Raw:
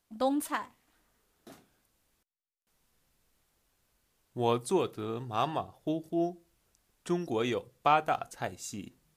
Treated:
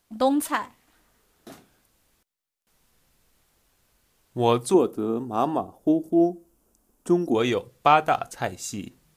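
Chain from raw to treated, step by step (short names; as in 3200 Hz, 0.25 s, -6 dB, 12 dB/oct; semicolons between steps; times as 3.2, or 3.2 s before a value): 4.74–7.35 graphic EQ 125/250/2000/4000 Hz -10/+9/-11/-11 dB; gain +7.5 dB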